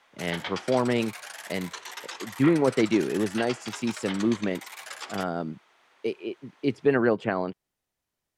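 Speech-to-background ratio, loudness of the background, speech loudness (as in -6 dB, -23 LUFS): 10.5 dB, -38.0 LUFS, -27.5 LUFS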